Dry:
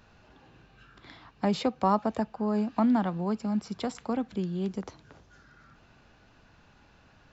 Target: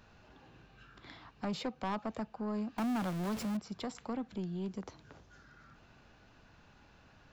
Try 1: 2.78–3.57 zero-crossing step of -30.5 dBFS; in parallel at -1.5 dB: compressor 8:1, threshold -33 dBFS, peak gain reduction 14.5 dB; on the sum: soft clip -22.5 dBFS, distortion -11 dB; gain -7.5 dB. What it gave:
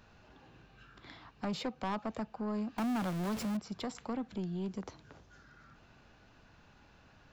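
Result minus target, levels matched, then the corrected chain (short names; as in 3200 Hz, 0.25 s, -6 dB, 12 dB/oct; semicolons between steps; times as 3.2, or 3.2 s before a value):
compressor: peak gain reduction -5.5 dB
2.78–3.57 zero-crossing step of -30.5 dBFS; in parallel at -1.5 dB: compressor 8:1, threshold -39.5 dBFS, peak gain reduction 20.5 dB; on the sum: soft clip -22.5 dBFS, distortion -11 dB; gain -7.5 dB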